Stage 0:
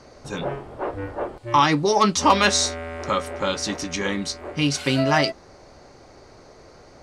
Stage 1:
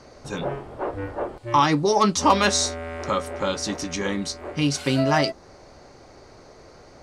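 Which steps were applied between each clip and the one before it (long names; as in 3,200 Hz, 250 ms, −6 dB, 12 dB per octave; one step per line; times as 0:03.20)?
dynamic equaliser 2,500 Hz, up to −4 dB, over −35 dBFS, Q 0.73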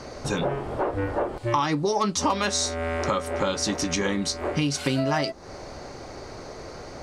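downward compressor 4 to 1, threshold −32 dBFS, peak gain reduction 16.5 dB
level +8.5 dB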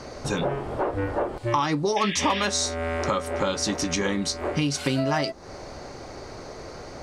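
sound drawn into the spectrogram noise, 0:01.96–0:02.45, 1,600–3,700 Hz −32 dBFS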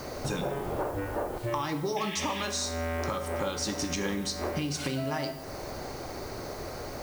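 downward compressor 4 to 1, threshold −30 dBFS, peak gain reduction 10 dB
background noise blue −54 dBFS
on a send at −7.5 dB: convolution reverb RT60 1.1 s, pre-delay 18 ms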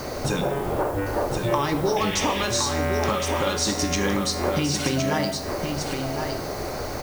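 single-tap delay 1,065 ms −5.5 dB
level +7 dB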